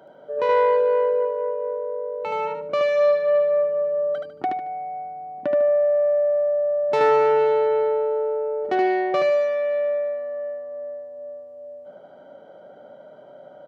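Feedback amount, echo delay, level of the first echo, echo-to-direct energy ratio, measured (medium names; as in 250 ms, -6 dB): 26%, 75 ms, -3.0 dB, -2.5 dB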